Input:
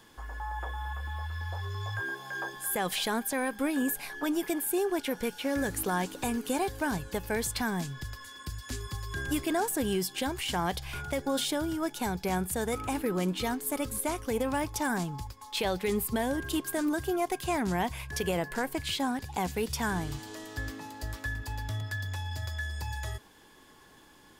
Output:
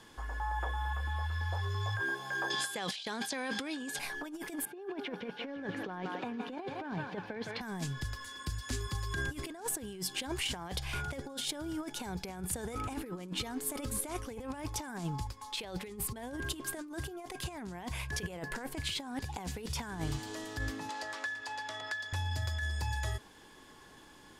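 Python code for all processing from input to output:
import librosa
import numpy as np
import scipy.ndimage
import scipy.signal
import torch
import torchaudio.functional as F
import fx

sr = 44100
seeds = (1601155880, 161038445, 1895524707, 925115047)

y = fx.chain(x, sr, fx.over_compress(threshold_db=-38.0, ratio=-1.0),
    fx.bandpass_edges(low_hz=130.0, high_hz=7500.0),
    fx.peak_eq(hz=4300.0, db=12.5, octaves=1.5), at=(2.5, 3.99))
y = fx.chain(y, sr, fx.highpass(hz=140.0, slope=24),
    fx.air_absorb(metres=290.0),
    fx.echo_thinned(ms=163, feedback_pct=71, hz=730.0, wet_db=-8.5), at=(4.65, 7.61))
y = fx.chain(y, sr, fx.bandpass_edges(low_hz=560.0, high_hz=7300.0),
    fx.band_squash(depth_pct=100), at=(20.89, 22.13))
y = scipy.signal.sosfilt(scipy.signal.butter(2, 11000.0, 'lowpass', fs=sr, output='sos'), y)
y = fx.over_compress(y, sr, threshold_db=-34.0, ratio=-0.5)
y = y * librosa.db_to_amplitude(-2.0)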